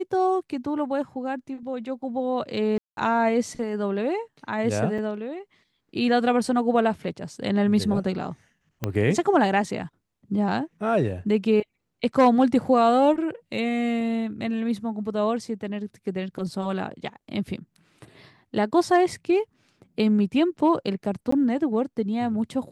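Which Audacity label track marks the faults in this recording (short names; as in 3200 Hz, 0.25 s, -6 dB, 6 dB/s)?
2.780000	2.970000	gap 0.192 s
4.980000	4.980000	gap 4.6 ms
8.840000	8.840000	pop -12 dBFS
21.310000	21.320000	gap 14 ms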